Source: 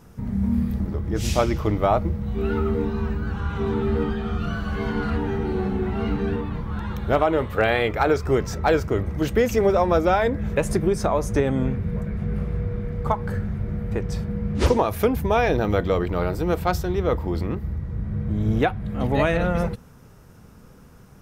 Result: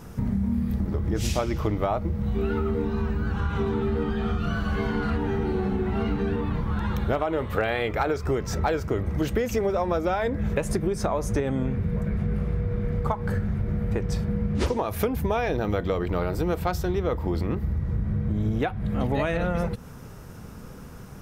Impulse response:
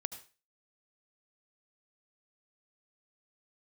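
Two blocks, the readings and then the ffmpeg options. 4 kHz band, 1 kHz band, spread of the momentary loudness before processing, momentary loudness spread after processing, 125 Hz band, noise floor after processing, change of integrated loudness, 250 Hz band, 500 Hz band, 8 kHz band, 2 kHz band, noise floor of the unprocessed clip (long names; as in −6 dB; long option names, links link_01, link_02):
−3.5 dB, −5.0 dB, 8 LU, 3 LU, −1.5 dB, −42 dBFS, −3.0 dB, −2.5 dB, −4.5 dB, −2.0 dB, −4.0 dB, −48 dBFS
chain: -af "acompressor=threshold=-29dB:ratio=6,volume=6.5dB"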